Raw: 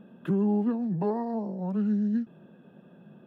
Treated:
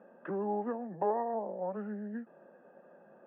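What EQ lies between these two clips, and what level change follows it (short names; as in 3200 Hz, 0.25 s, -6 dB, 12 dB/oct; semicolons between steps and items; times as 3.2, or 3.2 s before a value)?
air absorption 260 m; speaker cabinet 430–2200 Hz, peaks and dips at 550 Hz +9 dB, 790 Hz +6 dB, 1200 Hz +3 dB, 1800 Hz +6 dB; -1.5 dB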